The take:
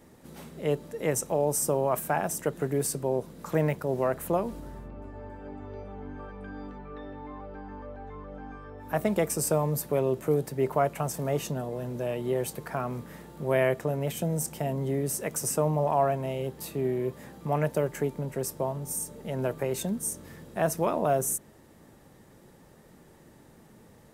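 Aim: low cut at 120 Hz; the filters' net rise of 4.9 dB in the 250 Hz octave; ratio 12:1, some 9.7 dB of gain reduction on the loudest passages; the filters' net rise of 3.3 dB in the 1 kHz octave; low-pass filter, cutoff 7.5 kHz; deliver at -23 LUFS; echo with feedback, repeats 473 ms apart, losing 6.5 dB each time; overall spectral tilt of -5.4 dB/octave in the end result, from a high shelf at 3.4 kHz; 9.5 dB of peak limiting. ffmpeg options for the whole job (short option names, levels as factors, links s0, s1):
-af "highpass=120,lowpass=7500,equalizer=f=250:t=o:g=7,equalizer=f=1000:t=o:g=4.5,highshelf=f=3400:g=-4.5,acompressor=threshold=0.0447:ratio=12,alimiter=level_in=1.12:limit=0.0631:level=0:latency=1,volume=0.891,aecho=1:1:473|946|1419|1892|2365|2838:0.473|0.222|0.105|0.0491|0.0231|0.0109,volume=3.98"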